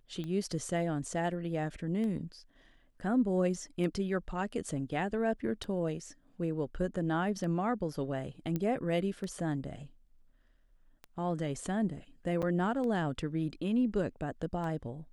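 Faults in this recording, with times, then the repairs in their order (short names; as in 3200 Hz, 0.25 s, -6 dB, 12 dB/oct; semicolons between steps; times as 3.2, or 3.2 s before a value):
tick 33 1/3 rpm -28 dBFS
8.56 pop -21 dBFS
12.42–12.43 gap 6.6 ms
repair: de-click; interpolate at 12.42, 6.6 ms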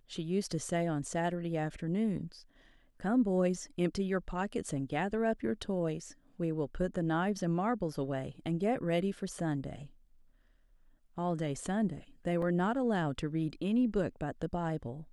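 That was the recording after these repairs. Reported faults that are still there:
none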